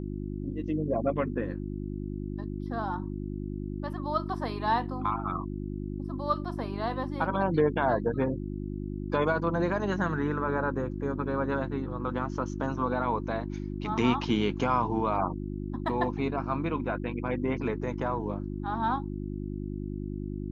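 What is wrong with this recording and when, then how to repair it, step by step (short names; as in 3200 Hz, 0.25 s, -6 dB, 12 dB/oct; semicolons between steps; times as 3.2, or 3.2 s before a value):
hum 50 Hz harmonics 7 -35 dBFS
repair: de-hum 50 Hz, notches 7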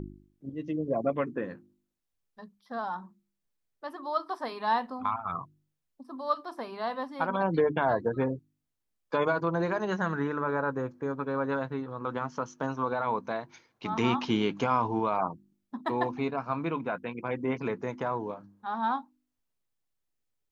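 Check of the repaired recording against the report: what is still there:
none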